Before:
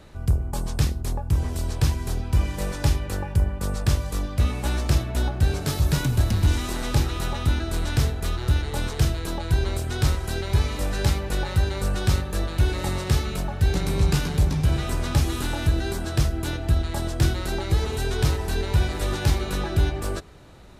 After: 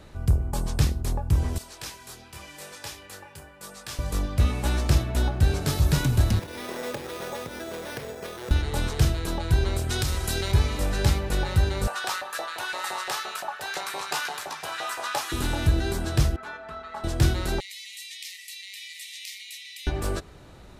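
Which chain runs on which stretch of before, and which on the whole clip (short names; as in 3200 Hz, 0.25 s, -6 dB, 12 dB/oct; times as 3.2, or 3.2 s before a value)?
1.58–3.99 HPF 1300 Hz 6 dB/oct + detuned doubles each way 12 cents
6.39–8.51 compressor 5:1, threshold -21 dBFS + speaker cabinet 290–4900 Hz, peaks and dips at 300 Hz -7 dB, 510 Hz +8 dB, 800 Hz -3 dB, 1300 Hz -5 dB, 3200 Hz -9 dB, 4600 Hz -4 dB + careless resampling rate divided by 6×, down none, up hold
9.89–10.52 high shelf 2800 Hz +9 dB + compressor 10:1, threshold -21 dBFS
11.87–15.32 LFO high-pass saw up 5.8 Hz 650–1700 Hz + notch 2200 Hz, Q 25
16.36–17.04 band-pass 1200 Hz, Q 2 + comb 4.6 ms, depth 92%
17.6–19.87 brick-wall FIR high-pass 1800 Hz + compressor 2:1, threshold -38 dBFS
whole clip: dry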